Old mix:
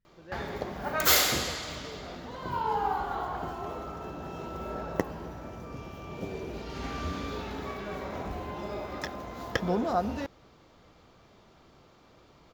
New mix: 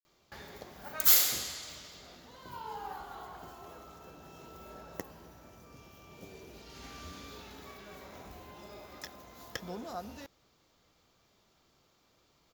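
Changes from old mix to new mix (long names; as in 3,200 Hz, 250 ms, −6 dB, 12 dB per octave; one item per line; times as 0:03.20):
speech: entry +2.60 s
master: add first-order pre-emphasis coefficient 0.8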